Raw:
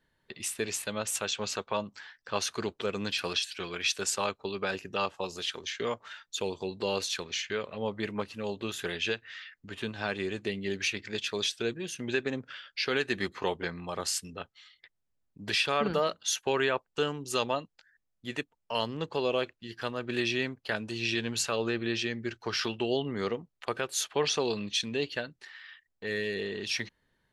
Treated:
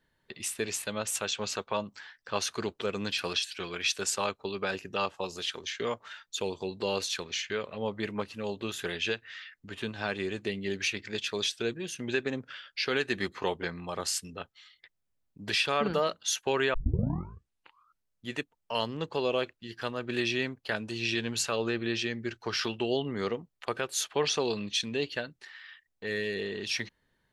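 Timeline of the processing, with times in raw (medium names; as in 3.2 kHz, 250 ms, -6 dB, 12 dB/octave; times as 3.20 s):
16.74 s: tape start 1.56 s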